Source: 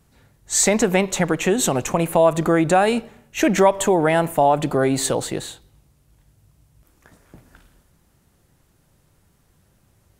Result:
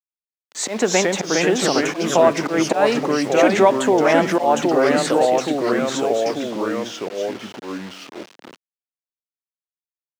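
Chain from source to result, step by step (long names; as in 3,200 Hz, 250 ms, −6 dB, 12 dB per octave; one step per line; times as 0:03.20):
delay with pitch and tempo change per echo 292 ms, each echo −2 semitones, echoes 3
low-pass that shuts in the quiet parts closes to 1,800 Hz, open at −15 dBFS
volume swells 122 ms
bit-depth reduction 6 bits, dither none
three-way crossover with the lows and the highs turned down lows −24 dB, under 200 Hz, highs −15 dB, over 6,400 Hz
level +1 dB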